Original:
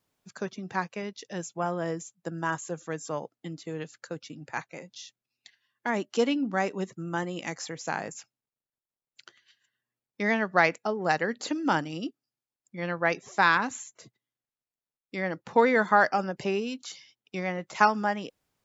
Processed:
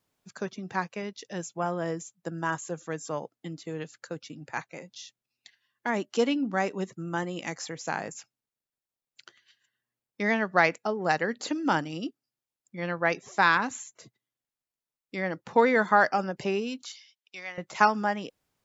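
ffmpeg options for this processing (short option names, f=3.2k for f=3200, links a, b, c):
-filter_complex "[0:a]asettb=1/sr,asplit=3[a][b][c];[a]atrim=end=16.854[d];[b]atrim=start=16.85:end=17.58,asetpts=PTS-STARTPTS,afade=t=in:d=0.004:c=qsin,afade=t=out:st=0.726:d=0.004:c=qsin,bandpass=f=4k:t=q:w=0.62[e];[c]atrim=start=17.576[f];[d][e]acrossfade=d=0.004:c1=hsin:c2=qsin[g];[g][f]acrossfade=d=0.004:c1=qsin:c2=hsin"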